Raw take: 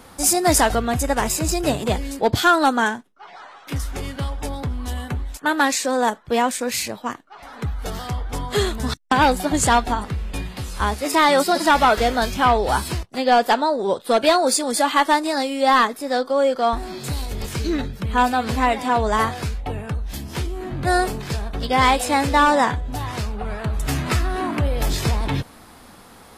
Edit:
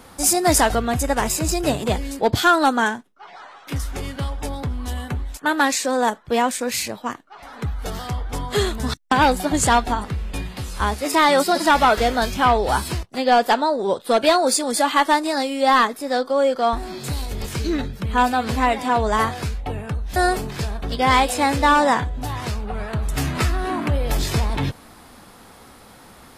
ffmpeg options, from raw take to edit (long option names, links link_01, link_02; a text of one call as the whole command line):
ffmpeg -i in.wav -filter_complex "[0:a]asplit=2[link_01][link_02];[link_01]atrim=end=20.162[link_03];[link_02]atrim=start=20.868[link_04];[link_03][link_04]acrossfade=duration=0.004:curve1=hsin:curve2=hsin" out.wav